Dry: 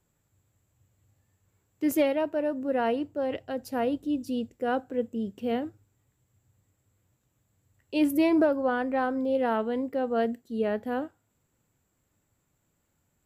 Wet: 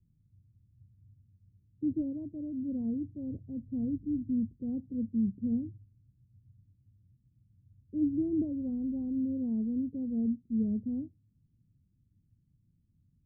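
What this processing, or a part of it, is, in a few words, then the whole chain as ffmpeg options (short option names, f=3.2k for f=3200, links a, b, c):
the neighbour's flat through the wall: -af "lowpass=f=220:w=0.5412,lowpass=f=220:w=1.3066,equalizer=f=110:t=o:w=0.77:g=3,volume=6dB"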